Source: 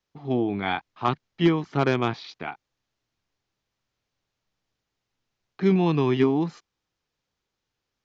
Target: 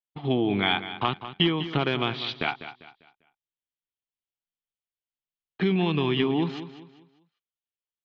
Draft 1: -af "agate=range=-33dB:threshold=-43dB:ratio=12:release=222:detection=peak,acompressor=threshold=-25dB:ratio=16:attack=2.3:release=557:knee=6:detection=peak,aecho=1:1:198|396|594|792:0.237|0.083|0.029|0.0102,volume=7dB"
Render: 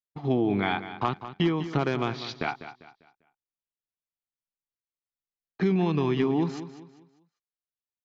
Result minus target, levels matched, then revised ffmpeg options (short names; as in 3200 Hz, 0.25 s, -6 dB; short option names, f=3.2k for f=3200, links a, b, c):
4000 Hz band -9.0 dB
-af "agate=range=-33dB:threshold=-43dB:ratio=12:release=222:detection=peak,acompressor=threshold=-25dB:ratio=16:attack=2.3:release=557:knee=6:detection=peak,lowpass=f=3.2k:t=q:w=4,aecho=1:1:198|396|594|792:0.237|0.083|0.029|0.0102,volume=7dB"